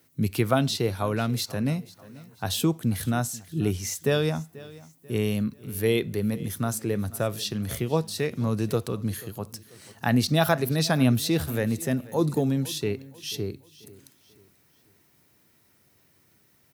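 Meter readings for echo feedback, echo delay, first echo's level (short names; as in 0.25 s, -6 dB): 39%, 0.488 s, -20.0 dB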